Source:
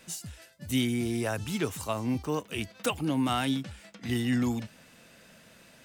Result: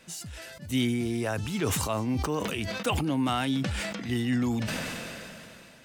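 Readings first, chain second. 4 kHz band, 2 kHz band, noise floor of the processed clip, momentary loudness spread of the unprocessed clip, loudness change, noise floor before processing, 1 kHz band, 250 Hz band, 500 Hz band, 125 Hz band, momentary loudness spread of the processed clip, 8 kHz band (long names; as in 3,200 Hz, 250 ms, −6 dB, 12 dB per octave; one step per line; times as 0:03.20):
+2.0 dB, +3.0 dB, −51 dBFS, 13 LU, +1.0 dB, −57 dBFS, +2.0 dB, +1.0 dB, +2.0 dB, +2.5 dB, 14 LU, +3.0 dB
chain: high-shelf EQ 8,100 Hz −6 dB
level that may fall only so fast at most 21 dB per second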